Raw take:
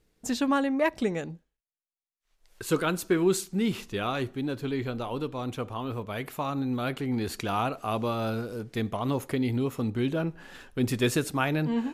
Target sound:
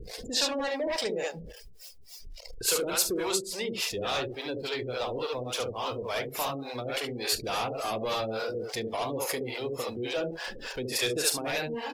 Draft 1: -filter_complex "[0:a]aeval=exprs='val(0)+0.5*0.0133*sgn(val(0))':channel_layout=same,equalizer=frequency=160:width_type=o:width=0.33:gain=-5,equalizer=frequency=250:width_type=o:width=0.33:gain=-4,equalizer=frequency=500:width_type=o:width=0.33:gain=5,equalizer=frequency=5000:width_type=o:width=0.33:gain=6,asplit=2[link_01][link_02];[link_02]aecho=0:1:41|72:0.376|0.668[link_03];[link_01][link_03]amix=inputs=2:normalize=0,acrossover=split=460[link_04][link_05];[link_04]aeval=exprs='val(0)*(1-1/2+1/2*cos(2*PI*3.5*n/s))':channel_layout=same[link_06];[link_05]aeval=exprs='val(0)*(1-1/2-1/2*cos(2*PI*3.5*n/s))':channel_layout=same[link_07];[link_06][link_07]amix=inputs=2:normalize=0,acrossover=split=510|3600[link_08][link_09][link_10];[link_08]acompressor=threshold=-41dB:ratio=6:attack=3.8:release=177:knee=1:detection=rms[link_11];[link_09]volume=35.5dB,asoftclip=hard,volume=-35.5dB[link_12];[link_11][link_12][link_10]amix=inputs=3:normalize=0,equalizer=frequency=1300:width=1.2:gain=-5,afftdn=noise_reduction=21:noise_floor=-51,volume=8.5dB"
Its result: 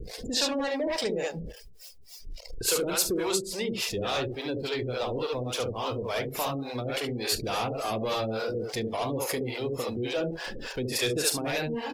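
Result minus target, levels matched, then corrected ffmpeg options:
downward compressor: peak gain reduction −6 dB
-filter_complex "[0:a]aeval=exprs='val(0)+0.5*0.0133*sgn(val(0))':channel_layout=same,equalizer=frequency=160:width_type=o:width=0.33:gain=-5,equalizer=frequency=250:width_type=o:width=0.33:gain=-4,equalizer=frequency=500:width_type=o:width=0.33:gain=5,equalizer=frequency=5000:width_type=o:width=0.33:gain=6,asplit=2[link_01][link_02];[link_02]aecho=0:1:41|72:0.376|0.668[link_03];[link_01][link_03]amix=inputs=2:normalize=0,acrossover=split=460[link_04][link_05];[link_04]aeval=exprs='val(0)*(1-1/2+1/2*cos(2*PI*3.5*n/s))':channel_layout=same[link_06];[link_05]aeval=exprs='val(0)*(1-1/2-1/2*cos(2*PI*3.5*n/s))':channel_layout=same[link_07];[link_06][link_07]amix=inputs=2:normalize=0,acrossover=split=510|3600[link_08][link_09][link_10];[link_08]acompressor=threshold=-48.5dB:ratio=6:attack=3.8:release=177:knee=1:detection=rms[link_11];[link_09]volume=35.5dB,asoftclip=hard,volume=-35.5dB[link_12];[link_11][link_12][link_10]amix=inputs=3:normalize=0,equalizer=frequency=1300:width=1.2:gain=-5,afftdn=noise_reduction=21:noise_floor=-51,volume=8.5dB"

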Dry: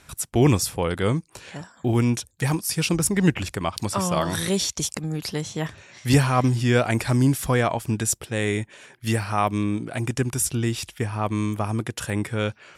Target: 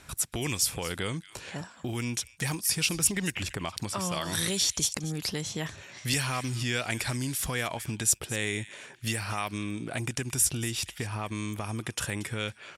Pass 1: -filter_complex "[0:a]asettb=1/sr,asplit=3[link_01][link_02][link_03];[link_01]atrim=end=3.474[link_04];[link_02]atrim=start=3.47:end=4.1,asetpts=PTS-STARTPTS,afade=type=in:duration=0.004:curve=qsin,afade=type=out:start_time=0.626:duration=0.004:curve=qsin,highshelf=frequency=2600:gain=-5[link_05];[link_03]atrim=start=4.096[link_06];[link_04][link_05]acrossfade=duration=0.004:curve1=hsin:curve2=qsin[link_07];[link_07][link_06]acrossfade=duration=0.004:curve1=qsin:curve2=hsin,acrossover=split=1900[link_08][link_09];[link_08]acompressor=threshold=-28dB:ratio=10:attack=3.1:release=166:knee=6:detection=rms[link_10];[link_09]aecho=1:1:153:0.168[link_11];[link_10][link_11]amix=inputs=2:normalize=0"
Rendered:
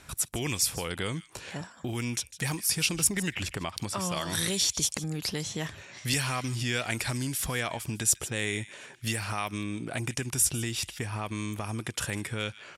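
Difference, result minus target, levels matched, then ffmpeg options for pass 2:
echo 78 ms early
-filter_complex "[0:a]asettb=1/sr,asplit=3[link_01][link_02][link_03];[link_01]atrim=end=3.474[link_04];[link_02]atrim=start=3.47:end=4.1,asetpts=PTS-STARTPTS,afade=type=in:duration=0.004:curve=qsin,afade=type=out:start_time=0.626:duration=0.004:curve=qsin,highshelf=frequency=2600:gain=-5[link_05];[link_03]atrim=start=4.096[link_06];[link_04][link_05]acrossfade=duration=0.004:curve1=hsin:curve2=qsin[link_07];[link_07][link_06]acrossfade=duration=0.004:curve1=qsin:curve2=hsin,acrossover=split=1900[link_08][link_09];[link_08]acompressor=threshold=-28dB:ratio=10:attack=3.1:release=166:knee=6:detection=rms[link_10];[link_09]aecho=1:1:231:0.168[link_11];[link_10][link_11]amix=inputs=2:normalize=0"

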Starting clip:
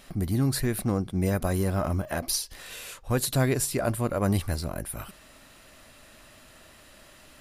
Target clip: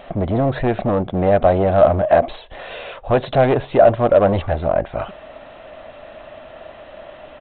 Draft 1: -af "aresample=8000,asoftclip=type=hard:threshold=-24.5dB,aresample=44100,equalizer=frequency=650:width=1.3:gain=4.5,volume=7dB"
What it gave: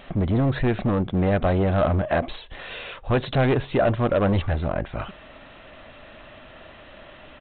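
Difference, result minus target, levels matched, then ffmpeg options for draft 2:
500 Hz band −3.0 dB
-af "aresample=8000,asoftclip=type=hard:threshold=-24.5dB,aresample=44100,equalizer=frequency=650:width=1.3:gain=16,volume=7dB"

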